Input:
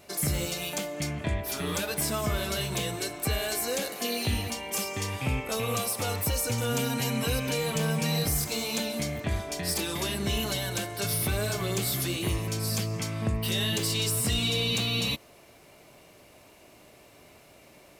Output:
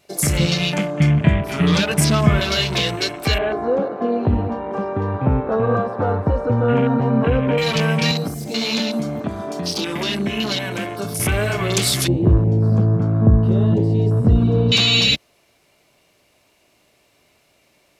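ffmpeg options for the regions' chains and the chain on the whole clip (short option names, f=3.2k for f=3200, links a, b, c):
-filter_complex "[0:a]asettb=1/sr,asplit=3[a][b][c];[a]atrim=end=0.394[d];[b]atrim=start=0.39:end=2.4,asetpts=PTS-STARTPTS,afade=t=in:d=0.004:c=qsin,afade=t=out:st=2.006:d=0.004:c=qsin,lowpass=11k,equalizer=f=160:t=o:w=0.91:g=12.5[e];[c]atrim=start=2.396[f];[d][e]acrossfade=d=0.004:c1=hsin:c2=qsin[g];[g][f]acrossfade=d=0.004:c1=qsin:c2=hsin,asettb=1/sr,asplit=3[h][i][j];[h]atrim=end=3.384[k];[i]atrim=start=3.38:end=7.58,asetpts=PTS-STARTPTS,afade=t=in:d=0.004:c=qsin,afade=t=out:st=4.196:d=0.004:c=qsin,lowpass=1.5k,equalizer=f=320:t=o:w=3:g=4.5[l];[j]atrim=start=7.576[m];[k][l]acrossfade=d=0.004:c1=hsin:c2=qsin[n];[n][m]acrossfade=d=0.004:c1=qsin:c2=hsin,asettb=1/sr,asplit=3[o][p][q];[o]atrim=end=8.114[r];[p]atrim=start=8.11:end=11.2,asetpts=PTS-STARTPTS,afade=t=in:d=0.004:c=qsin,afade=t=out:st=3.086:d=0.004:c=qsin,acompressor=threshold=-31dB:ratio=2:attack=3.2:release=140:knee=1:detection=peak,highpass=140,equalizer=f=230:w=1.6:g=6.5[s];[q]atrim=start=11.196[t];[r][s]acrossfade=d=0.004:c1=hsin:c2=qsin[u];[u][t]acrossfade=d=0.004:c1=qsin:c2=hsin,asettb=1/sr,asplit=3[v][w][x];[v]atrim=end=12.084[y];[w]atrim=start=12.08:end=14.72,asetpts=PTS-STARTPTS,afade=t=in:d=0.004:c=qsin,afade=t=out:st=2.636:d=0.004:c=qsin,lowpass=f=1.2k:p=1,tiltshelf=f=840:g=7.5[z];[x]atrim=start=14.716[aa];[y][z]acrossfade=d=0.004:c1=hsin:c2=qsin[ab];[ab][aa]acrossfade=d=0.004:c1=qsin:c2=hsin,afwtdn=0.0126,equalizer=f=4k:w=0.48:g=6,volume=9dB"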